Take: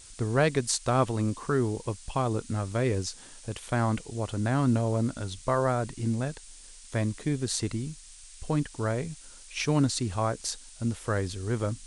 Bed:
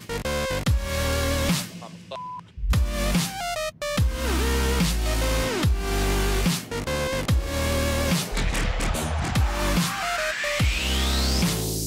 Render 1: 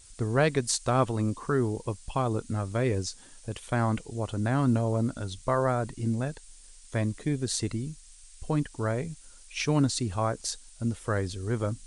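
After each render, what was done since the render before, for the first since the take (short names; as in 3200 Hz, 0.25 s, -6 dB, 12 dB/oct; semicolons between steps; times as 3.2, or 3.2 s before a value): denoiser 6 dB, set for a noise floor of -49 dBFS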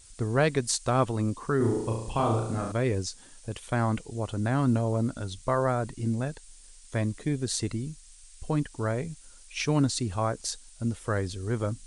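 1.57–2.72 flutter echo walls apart 6 m, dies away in 0.71 s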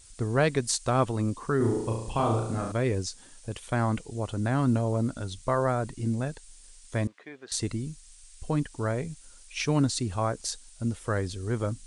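7.07–7.52 BPF 780–2200 Hz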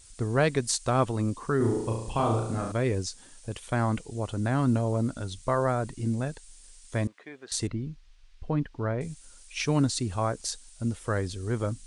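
7.67–9.01 air absorption 280 m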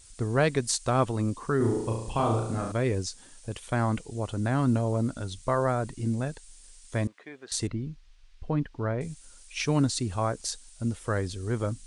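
nothing audible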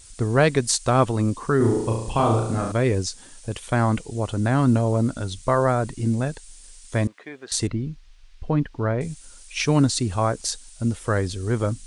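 gain +6 dB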